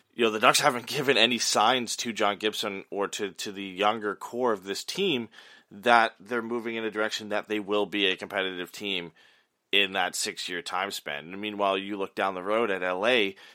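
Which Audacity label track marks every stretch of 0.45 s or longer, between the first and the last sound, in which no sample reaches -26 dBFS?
5.220000	5.860000	silence
9.000000	9.730000	silence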